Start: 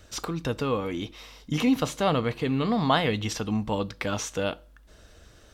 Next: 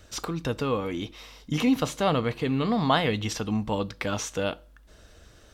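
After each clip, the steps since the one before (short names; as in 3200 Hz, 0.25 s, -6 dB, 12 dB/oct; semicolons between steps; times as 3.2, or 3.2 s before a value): nothing audible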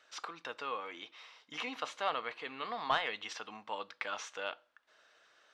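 HPF 1100 Hz 12 dB/oct; one-sided clip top -19.5 dBFS; tape spacing loss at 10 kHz 23 dB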